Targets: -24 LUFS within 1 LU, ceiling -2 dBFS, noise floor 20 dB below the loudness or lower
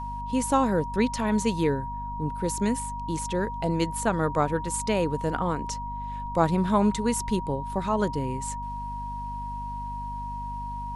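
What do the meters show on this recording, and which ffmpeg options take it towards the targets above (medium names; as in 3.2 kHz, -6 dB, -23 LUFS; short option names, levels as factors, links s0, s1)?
hum 50 Hz; highest harmonic 250 Hz; hum level -35 dBFS; steady tone 950 Hz; tone level -33 dBFS; loudness -27.5 LUFS; peak level -9.5 dBFS; loudness target -24.0 LUFS
-> -af "bandreject=f=50:t=h:w=6,bandreject=f=100:t=h:w=6,bandreject=f=150:t=h:w=6,bandreject=f=200:t=h:w=6,bandreject=f=250:t=h:w=6"
-af "bandreject=f=950:w=30"
-af "volume=1.5"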